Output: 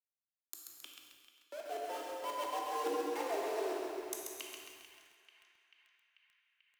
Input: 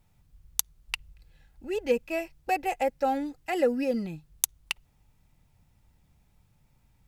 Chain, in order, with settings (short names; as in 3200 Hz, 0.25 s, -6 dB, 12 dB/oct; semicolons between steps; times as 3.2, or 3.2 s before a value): level-crossing sampler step -25.5 dBFS; Doppler pass-by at 3.08, 22 m/s, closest 1.1 m; HPF 120 Hz 24 dB/oct; low shelf 340 Hz +11 dB; notches 60/120/180/240/300/360 Hz; reverse; compressor 6:1, threshold -51 dBFS, peak gain reduction 18 dB; reverse; frequency shift +160 Hz; narrowing echo 0.458 s, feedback 76%, band-pass 2100 Hz, level -12.5 dB; reverb RT60 2.1 s, pre-delay 8 ms, DRR -0.5 dB; speed mistake 24 fps film run at 25 fps; lo-fi delay 0.134 s, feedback 55%, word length 12-bit, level -4 dB; gain +13 dB